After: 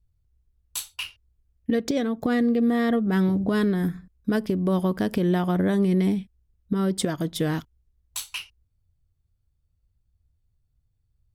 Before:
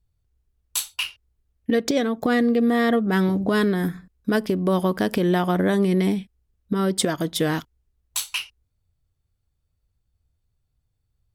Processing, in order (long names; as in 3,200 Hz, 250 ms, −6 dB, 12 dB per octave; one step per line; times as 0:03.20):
low-shelf EQ 230 Hz +9.5 dB
level −6 dB